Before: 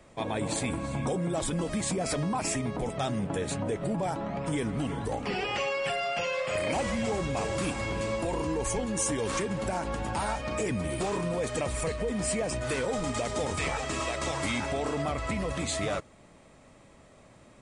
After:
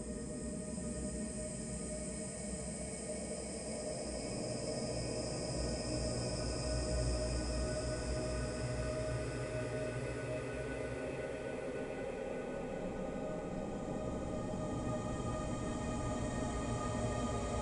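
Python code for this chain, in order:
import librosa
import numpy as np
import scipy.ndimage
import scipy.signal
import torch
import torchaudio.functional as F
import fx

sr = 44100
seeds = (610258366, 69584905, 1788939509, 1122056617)

y = fx.envelope_sharpen(x, sr, power=1.5)
y = fx.over_compress(y, sr, threshold_db=-38.0, ratio=-0.5)
y = fx.paulstretch(y, sr, seeds[0], factor=17.0, window_s=0.5, from_s=12.16)
y = fx.echo_split(y, sr, split_hz=370.0, low_ms=134, high_ms=771, feedback_pct=52, wet_db=-4.5)
y = y * 10.0 ** (1.5 / 20.0)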